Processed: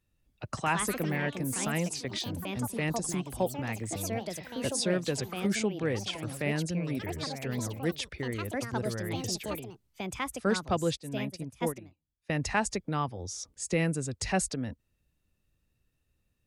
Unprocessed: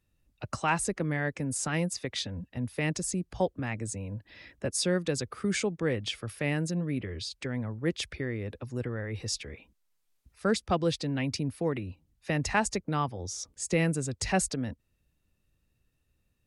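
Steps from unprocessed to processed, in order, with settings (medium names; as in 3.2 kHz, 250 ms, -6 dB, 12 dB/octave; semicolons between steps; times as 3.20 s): ever faster or slower copies 241 ms, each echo +4 st, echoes 3, each echo -6 dB; 10.97–12.30 s: upward expansion 2.5:1, over -37 dBFS; trim -1.5 dB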